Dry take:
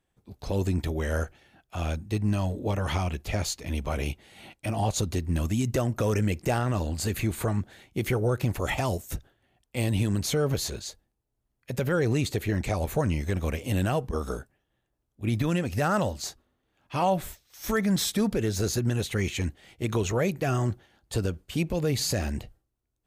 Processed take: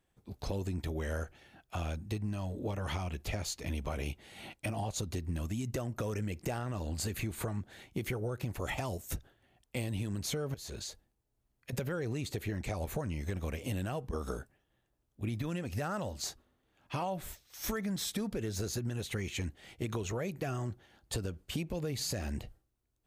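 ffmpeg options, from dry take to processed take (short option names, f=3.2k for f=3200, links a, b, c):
-filter_complex "[0:a]asettb=1/sr,asplit=3[a][b][c];[a]atrim=end=10.544[d];[b]atrim=start=10.54:end=11.73,asetpts=PTS-STARTPTS,afade=t=in:d=0.004:c=qsin,afade=t=out:st=1.186:d=0.004:c=qsin,acompressor=threshold=-37dB:ratio=10:attack=3.2:release=140:knee=1:detection=peak[e];[c]atrim=start=11.726[f];[d][e]acrossfade=d=0.004:c1=hsin:c2=qsin[g];[g][f]acrossfade=d=0.004:c1=qsin:c2=hsin,acompressor=threshold=-33dB:ratio=6"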